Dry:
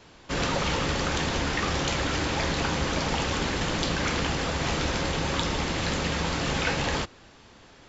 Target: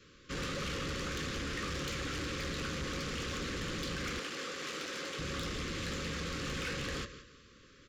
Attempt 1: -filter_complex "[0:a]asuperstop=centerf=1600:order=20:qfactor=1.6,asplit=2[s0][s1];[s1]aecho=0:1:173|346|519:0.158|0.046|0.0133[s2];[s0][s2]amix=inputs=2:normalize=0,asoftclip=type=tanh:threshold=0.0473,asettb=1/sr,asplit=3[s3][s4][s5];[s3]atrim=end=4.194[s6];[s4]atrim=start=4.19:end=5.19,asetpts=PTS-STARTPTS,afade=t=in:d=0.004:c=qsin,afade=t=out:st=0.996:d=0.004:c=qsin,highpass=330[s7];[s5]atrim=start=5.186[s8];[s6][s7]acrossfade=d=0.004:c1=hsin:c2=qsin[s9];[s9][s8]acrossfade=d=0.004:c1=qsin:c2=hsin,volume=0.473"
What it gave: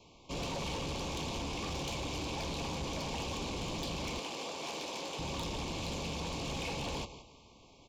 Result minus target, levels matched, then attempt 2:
2 kHz band -4.5 dB
-filter_complex "[0:a]asuperstop=centerf=780:order=20:qfactor=1.6,asplit=2[s0][s1];[s1]aecho=0:1:173|346|519:0.158|0.046|0.0133[s2];[s0][s2]amix=inputs=2:normalize=0,asoftclip=type=tanh:threshold=0.0473,asettb=1/sr,asplit=3[s3][s4][s5];[s3]atrim=end=4.194[s6];[s4]atrim=start=4.19:end=5.19,asetpts=PTS-STARTPTS,afade=t=in:d=0.004:c=qsin,afade=t=out:st=0.996:d=0.004:c=qsin,highpass=330[s7];[s5]atrim=start=5.186[s8];[s6][s7]acrossfade=d=0.004:c1=hsin:c2=qsin[s9];[s9][s8]acrossfade=d=0.004:c1=qsin:c2=hsin,volume=0.473"

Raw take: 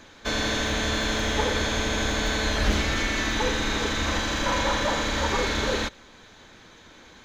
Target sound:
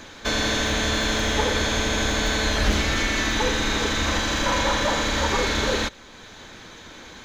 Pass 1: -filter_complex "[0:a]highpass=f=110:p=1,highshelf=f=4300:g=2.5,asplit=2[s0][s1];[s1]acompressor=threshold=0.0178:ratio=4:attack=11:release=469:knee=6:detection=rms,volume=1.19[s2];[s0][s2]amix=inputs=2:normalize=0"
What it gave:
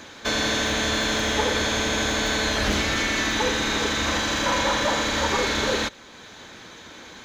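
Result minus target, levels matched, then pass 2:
125 Hz band -4.0 dB
-filter_complex "[0:a]highshelf=f=4300:g=2.5,asplit=2[s0][s1];[s1]acompressor=threshold=0.0178:ratio=4:attack=11:release=469:knee=6:detection=rms,volume=1.19[s2];[s0][s2]amix=inputs=2:normalize=0"

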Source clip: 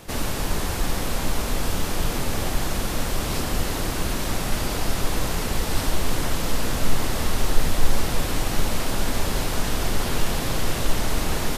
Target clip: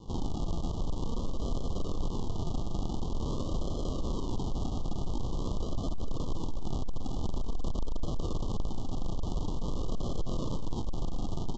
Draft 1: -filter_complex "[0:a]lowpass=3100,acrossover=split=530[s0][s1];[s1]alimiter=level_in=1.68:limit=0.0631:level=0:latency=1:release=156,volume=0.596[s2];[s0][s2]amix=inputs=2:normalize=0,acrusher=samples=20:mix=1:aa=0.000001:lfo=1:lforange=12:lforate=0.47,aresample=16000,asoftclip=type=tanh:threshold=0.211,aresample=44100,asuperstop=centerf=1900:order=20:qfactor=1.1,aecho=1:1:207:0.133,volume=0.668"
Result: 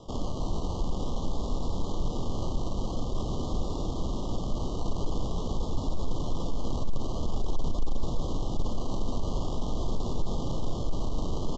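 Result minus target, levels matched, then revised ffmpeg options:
saturation: distortion -6 dB; decimation with a swept rate: distortion -5 dB
-filter_complex "[0:a]lowpass=3100,acrossover=split=530[s0][s1];[s1]alimiter=level_in=1.68:limit=0.0631:level=0:latency=1:release=156,volume=0.596[s2];[s0][s2]amix=inputs=2:normalize=0,acrusher=samples=67:mix=1:aa=0.000001:lfo=1:lforange=40.2:lforate=0.47,aresample=16000,asoftclip=type=tanh:threshold=0.0944,aresample=44100,asuperstop=centerf=1900:order=20:qfactor=1.1,aecho=1:1:207:0.133,volume=0.668"

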